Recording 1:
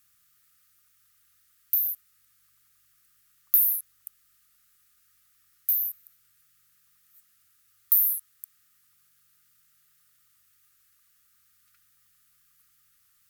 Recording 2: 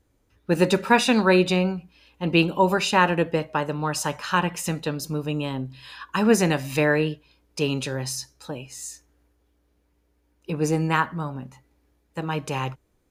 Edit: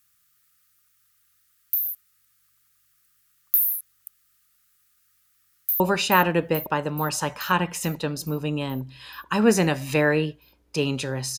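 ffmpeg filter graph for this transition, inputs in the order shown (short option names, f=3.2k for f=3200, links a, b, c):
-filter_complex "[0:a]apad=whole_dur=11.38,atrim=end=11.38,atrim=end=5.802[a];[1:a]atrim=start=2.628:end=8.21[b];[a][b]acrossfade=d=0.004:c1=hsin:c2=hsin,asplit=2[c][d];[d]afade=t=in:st=5.26:d=0.01,afade=t=out:st=5.8:d=0.01,aecho=0:1:430|860|1290|1720|2150|2580|3010|3440|3870|4300|4730:0.446684|0.312679|0.218875|0.153212|0.107249|0.0750741|0.0525519|0.0367863|0.0257504|0.0180253|0.0126177[e];[c][e]amix=inputs=2:normalize=0"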